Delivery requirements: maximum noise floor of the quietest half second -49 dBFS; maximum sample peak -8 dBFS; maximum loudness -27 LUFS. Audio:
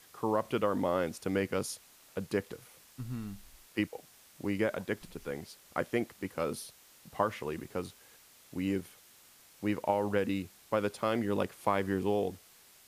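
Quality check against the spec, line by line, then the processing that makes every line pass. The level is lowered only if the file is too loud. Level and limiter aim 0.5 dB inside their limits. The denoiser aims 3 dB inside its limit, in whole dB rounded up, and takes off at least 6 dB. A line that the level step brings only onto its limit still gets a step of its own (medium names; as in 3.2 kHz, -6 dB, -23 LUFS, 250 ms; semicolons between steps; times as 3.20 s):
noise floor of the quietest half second -59 dBFS: pass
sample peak -13.0 dBFS: pass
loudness -34.5 LUFS: pass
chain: none needed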